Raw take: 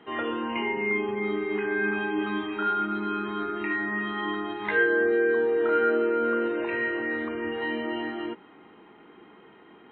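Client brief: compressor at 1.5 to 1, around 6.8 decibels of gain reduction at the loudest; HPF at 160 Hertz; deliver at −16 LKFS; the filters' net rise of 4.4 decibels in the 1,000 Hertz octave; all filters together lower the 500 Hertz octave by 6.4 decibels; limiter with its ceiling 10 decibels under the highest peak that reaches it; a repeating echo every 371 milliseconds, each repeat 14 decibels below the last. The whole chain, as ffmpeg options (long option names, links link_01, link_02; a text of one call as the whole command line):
ffmpeg -i in.wav -af "highpass=160,equalizer=frequency=500:width_type=o:gain=-9,equalizer=frequency=1000:width_type=o:gain=8.5,acompressor=threshold=-38dB:ratio=1.5,alimiter=level_in=4.5dB:limit=-24dB:level=0:latency=1,volume=-4.5dB,aecho=1:1:371|742:0.2|0.0399,volume=19.5dB" out.wav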